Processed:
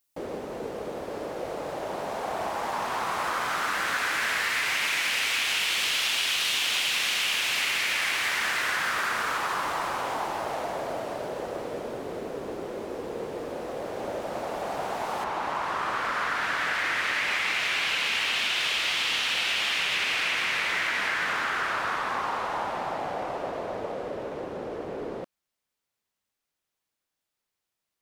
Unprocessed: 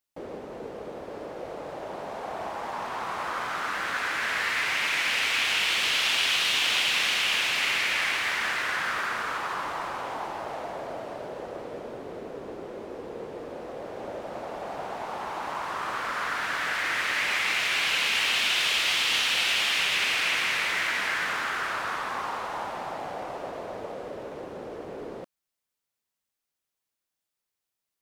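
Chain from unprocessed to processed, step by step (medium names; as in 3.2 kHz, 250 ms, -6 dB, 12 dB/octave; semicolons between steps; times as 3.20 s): treble shelf 6.1 kHz +8.5 dB, from 15.24 s -5.5 dB; compression, threshold -27 dBFS, peak gain reduction 7.5 dB; trim +3.5 dB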